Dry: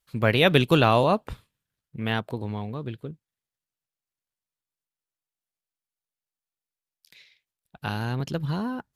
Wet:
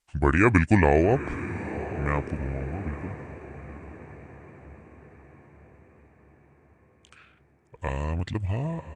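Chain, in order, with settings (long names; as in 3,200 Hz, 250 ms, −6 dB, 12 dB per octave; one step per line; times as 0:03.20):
pitch shifter −7.5 semitones
feedback delay with all-pass diffusion 923 ms, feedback 52%, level −13 dB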